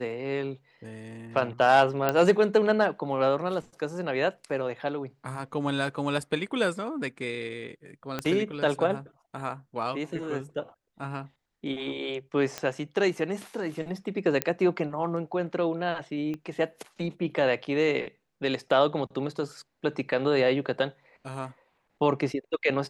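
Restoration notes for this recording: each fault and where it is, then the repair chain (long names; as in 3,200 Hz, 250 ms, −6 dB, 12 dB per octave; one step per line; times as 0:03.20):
0:02.09: click −10 dBFS
0:08.19: click −15 dBFS
0:12.58: click −16 dBFS
0:14.42: click −8 dBFS
0:16.34: click −24 dBFS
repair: click removal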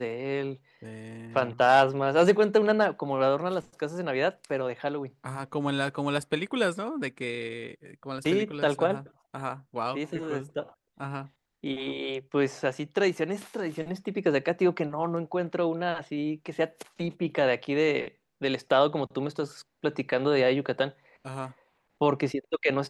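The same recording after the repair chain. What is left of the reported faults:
0:08.19: click
0:16.34: click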